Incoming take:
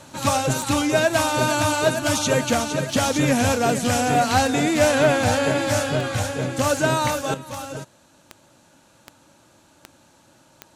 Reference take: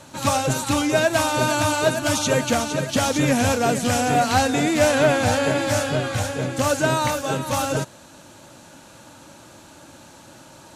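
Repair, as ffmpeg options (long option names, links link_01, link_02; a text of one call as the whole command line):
ffmpeg -i in.wav -af "adeclick=threshold=4,asetnsamples=nb_out_samples=441:pad=0,asendcmd='7.34 volume volume 9.5dB',volume=0dB" out.wav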